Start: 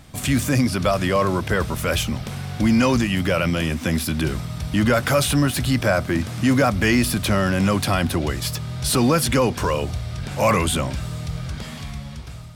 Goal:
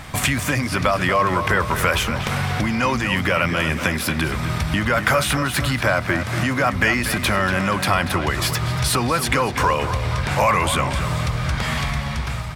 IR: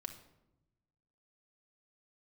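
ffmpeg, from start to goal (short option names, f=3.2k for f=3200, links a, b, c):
-filter_complex "[0:a]acompressor=threshold=-28dB:ratio=6,equalizer=f=250:t=o:w=1:g=-3,equalizer=f=1k:t=o:w=1:g=7,equalizer=f=2k:t=o:w=1:g=7,asplit=2[a][b];[b]adelay=238,lowpass=f=4.1k:p=1,volume=-9.5dB,asplit=2[c][d];[d]adelay=238,lowpass=f=4.1k:p=1,volume=0.54,asplit=2[e][f];[f]adelay=238,lowpass=f=4.1k:p=1,volume=0.54,asplit=2[g][h];[h]adelay=238,lowpass=f=4.1k:p=1,volume=0.54,asplit=2[i][j];[j]adelay=238,lowpass=f=4.1k:p=1,volume=0.54,asplit=2[k][l];[l]adelay=238,lowpass=f=4.1k:p=1,volume=0.54[m];[c][e][g][i][k][m]amix=inputs=6:normalize=0[n];[a][n]amix=inputs=2:normalize=0,volume=8.5dB"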